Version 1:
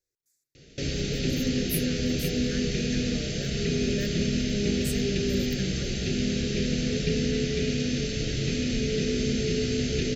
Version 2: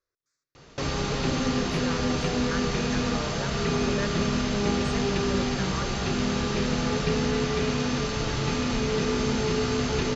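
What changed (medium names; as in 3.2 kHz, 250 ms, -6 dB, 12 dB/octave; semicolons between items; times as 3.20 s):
speech: add low-pass 5.6 kHz 24 dB/octave; master: remove Butterworth band-stop 1 kHz, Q 0.65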